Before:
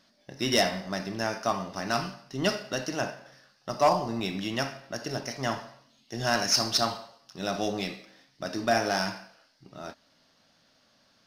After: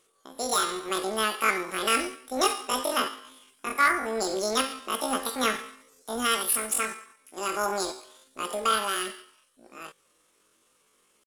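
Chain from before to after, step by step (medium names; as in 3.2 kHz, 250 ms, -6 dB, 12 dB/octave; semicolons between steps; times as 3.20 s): gain riding within 4 dB 0.5 s; pitch shift +11.5 st; trim +2 dB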